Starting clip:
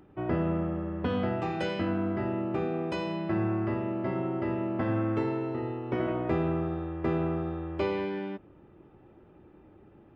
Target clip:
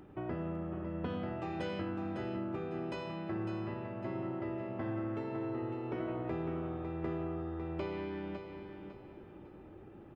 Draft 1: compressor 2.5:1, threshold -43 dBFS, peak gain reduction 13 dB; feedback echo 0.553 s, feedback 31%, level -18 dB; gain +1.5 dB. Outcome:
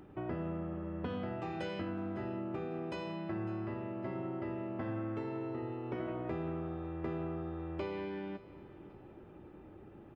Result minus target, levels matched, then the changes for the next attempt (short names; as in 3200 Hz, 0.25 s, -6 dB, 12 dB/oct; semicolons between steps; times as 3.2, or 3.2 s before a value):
echo-to-direct -10 dB
change: feedback echo 0.553 s, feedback 31%, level -8 dB